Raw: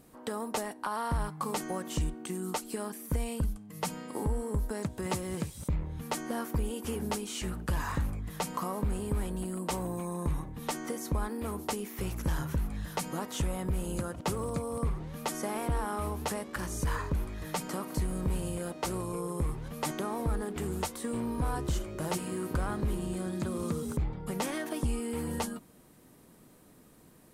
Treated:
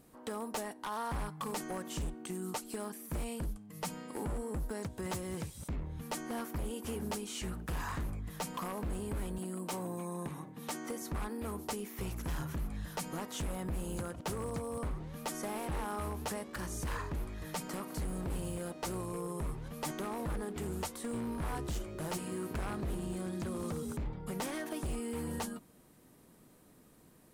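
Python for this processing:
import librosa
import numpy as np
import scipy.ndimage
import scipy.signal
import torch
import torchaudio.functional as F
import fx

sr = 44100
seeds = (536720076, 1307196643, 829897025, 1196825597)

y = fx.highpass(x, sr, hz=150.0, slope=24, at=(9.38, 11.02))
y = 10.0 ** (-27.5 / 20.0) * (np.abs((y / 10.0 ** (-27.5 / 20.0) + 3.0) % 4.0 - 2.0) - 1.0)
y = y * 10.0 ** (-3.5 / 20.0)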